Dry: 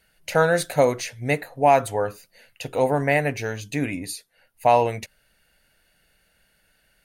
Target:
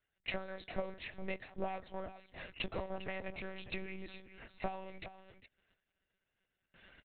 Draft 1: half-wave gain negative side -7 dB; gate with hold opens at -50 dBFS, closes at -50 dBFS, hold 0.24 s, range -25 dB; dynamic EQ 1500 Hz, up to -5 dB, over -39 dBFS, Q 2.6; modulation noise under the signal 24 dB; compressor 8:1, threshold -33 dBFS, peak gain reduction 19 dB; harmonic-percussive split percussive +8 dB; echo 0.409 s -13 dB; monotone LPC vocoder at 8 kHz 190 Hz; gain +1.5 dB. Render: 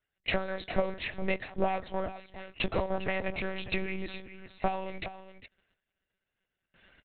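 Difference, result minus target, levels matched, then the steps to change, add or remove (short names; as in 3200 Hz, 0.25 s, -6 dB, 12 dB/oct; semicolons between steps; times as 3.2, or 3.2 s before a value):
compressor: peak gain reduction -10 dB
change: compressor 8:1, threshold -44.5 dBFS, peak gain reduction 29 dB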